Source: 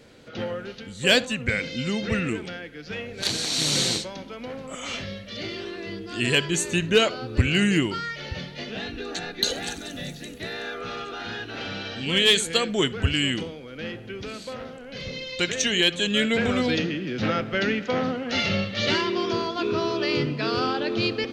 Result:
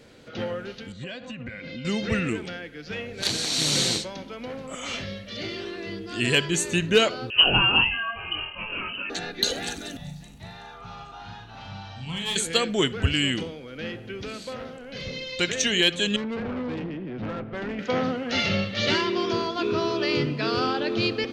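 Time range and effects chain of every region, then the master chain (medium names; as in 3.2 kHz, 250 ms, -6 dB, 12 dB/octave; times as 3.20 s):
0.92–1.85 s: low-pass 3.2 kHz + compression 20:1, threshold -31 dBFS + comb of notches 440 Hz
7.30–9.10 s: doubling 23 ms -3 dB + frequency inversion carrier 3 kHz
9.97–12.36 s: FFT filter 150 Hz 0 dB, 330 Hz -19 dB, 510 Hz -19 dB, 860 Hz +3 dB, 1.6 kHz -14 dB, 8.2 kHz -9 dB + flutter echo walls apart 6.8 m, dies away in 0.34 s
16.16–17.79 s: tape spacing loss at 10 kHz 43 dB + valve stage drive 27 dB, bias 0.5
whole clip: none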